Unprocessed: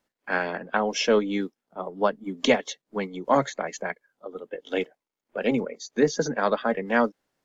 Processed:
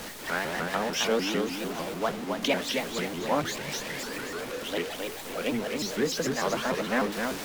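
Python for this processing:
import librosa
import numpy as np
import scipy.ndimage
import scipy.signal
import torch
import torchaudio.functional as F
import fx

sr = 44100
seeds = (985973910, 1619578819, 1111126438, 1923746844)

p1 = x + 0.5 * 10.0 ** (-24.5 / 20.0) * np.sign(x)
p2 = fx.dynamic_eq(p1, sr, hz=3100.0, q=0.7, threshold_db=-35.0, ratio=4.0, max_db=4)
p3 = p2 + fx.echo_feedback(p2, sr, ms=264, feedback_pct=42, wet_db=-4.5, dry=0)
p4 = fx.spec_repair(p3, sr, seeds[0], start_s=3.58, length_s=0.7, low_hz=210.0, high_hz=1900.0, source='both')
p5 = fx.vibrato_shape(p4, sr, shape='saw_up', rate_hz=6.7, depth_cents=250.0)
y = F.gain(torch.from_numpy(p5), -8.5).numpy()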